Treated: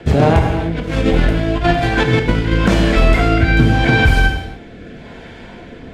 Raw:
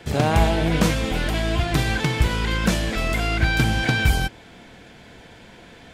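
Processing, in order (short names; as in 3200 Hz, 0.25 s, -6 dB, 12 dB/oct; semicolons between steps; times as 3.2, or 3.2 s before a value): LPF 1700 Hz 6 dB/oct; 0.39–2.53 negative-ratio compressor -26 dBFS, ratio -0.5; rotary speaker horn 7.5 Hz, later 0.85 Hz, at 0.59; non-linear reverb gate 0.33 s falling, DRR 4.5 dB; maximiser +14 dB; gain -1.5 dB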